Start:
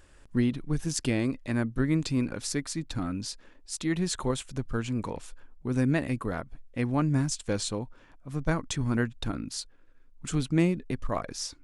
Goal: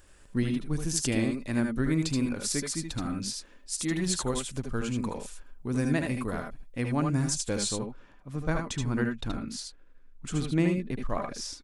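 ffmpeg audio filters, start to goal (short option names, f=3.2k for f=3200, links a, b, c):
-af "asetnsamples=n=441:p=0,asendcmd='7.78 highshelf g -3',highshelf=f=6.3k:g=8,aecho=1:1:72|76|81:0.282|0.447|0.422,volume=-2dB"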